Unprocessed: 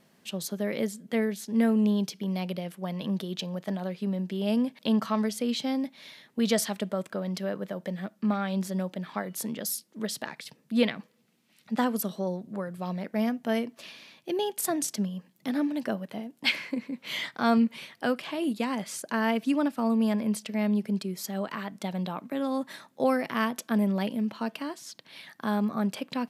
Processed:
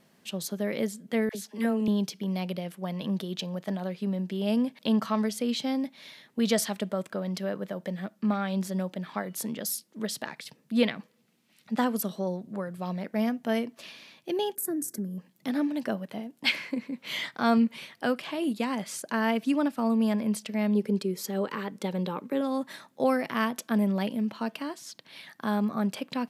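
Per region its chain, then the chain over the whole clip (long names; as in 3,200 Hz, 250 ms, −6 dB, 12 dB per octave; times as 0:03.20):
0:01.29–0:01.88: high-pass filter 290 Hz 6 dB per octave + all-pass dispersion lows, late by 60 ms, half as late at 830 Hz
0:14.55–0:15.18: drawn EQ curve 190 Hz 0 dB, 360 Hz +7 dB, 860 Hz −15 dB, 1,600 Hz −2 dB, 2,900 Hz −24 dB, 8,300 Hz 0 dB, 13,000 Hz +7 dB + downward compressor 2 to 1, threshold −32 dBFS
0:20.75–0:22.41: Butterworth band-reject 680 Hz, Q 4.2 + parametric band 440 Hz +9.5 dB
whole clip: no processing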